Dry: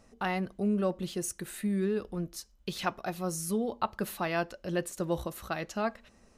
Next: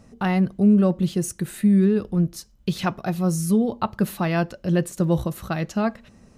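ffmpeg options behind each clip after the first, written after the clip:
-af "equalizer=f=140:t=o:w=1.8:g=12.5,volume=4.5dB"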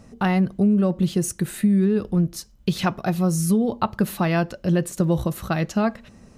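-af "acompressor=threshold=-18dB:ratio=6,volume=3dB"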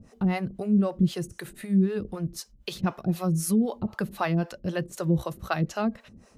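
-filter_complex "[0:a]acrossover=split=440[a][b];[a]aeval=exprs='val(0)*(1-1/2+1/2*cos(2*PI*3.9*n/s))':c=same[c];[b]aeval=exprs='val(0)*(1-1/2-1/2*cos(2*PI*3.9*n/s))':c=same[d];[c][d]amix=inputs=2:normalize=0"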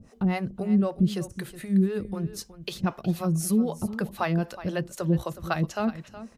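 -af "aecho=1:1:368:0.188"

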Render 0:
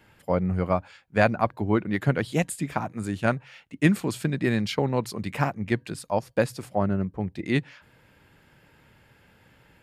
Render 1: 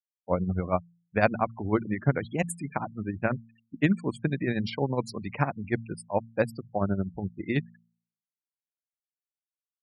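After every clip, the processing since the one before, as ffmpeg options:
-af "tremolo=f=12:d=0.64,afftfilt=real='re*gte(hypot(re,im),0.0178)':imag='im*gte(hypot(re,im),0.0178)':win_size=1024:overlap=0.75,bandreject=f=56.97:t=h:w=4,bandreject=f=113.94:t=h:w=4,bandreject=f=170.91:t=h:w=4,bandreject=f=227.88:t=h:w=4"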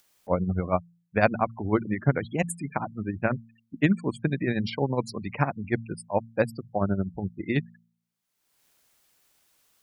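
-af "acompressor=mode=upward:threshold=-44dB:ratio=2.5,volume=1.5dB"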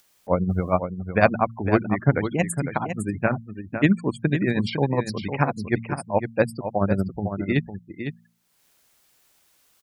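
-af "aecho=1:1:505:0.376,volume=3.5dB"

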